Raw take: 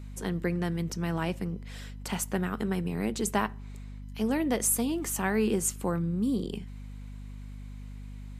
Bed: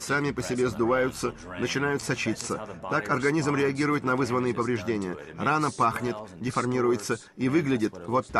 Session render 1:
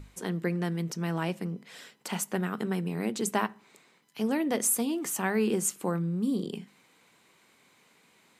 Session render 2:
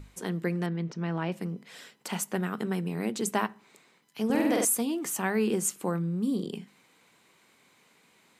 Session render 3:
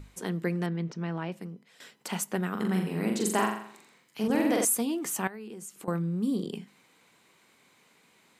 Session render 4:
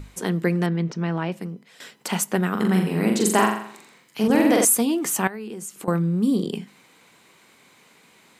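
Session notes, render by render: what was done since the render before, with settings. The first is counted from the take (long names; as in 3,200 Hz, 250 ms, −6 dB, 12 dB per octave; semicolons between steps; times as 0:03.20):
mains-hum notches 50/100/150/200/250 Hz
0:00.66–0:01.32: high-frequency loss of the air 180 metres; 0:04.25–0:04.65: flutter between parallel walls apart 8.2 metres, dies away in 1.1 s
0:00.86–0:01.80: fade out, to −13.5 dB; 0:02.51–0:04.28: flutter between parallel walls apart 7.3 metres, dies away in 0.6 s; 0:05.27–0:05.88: downward compressor 5 to 1, threshold −41 dBFS
level +8 dB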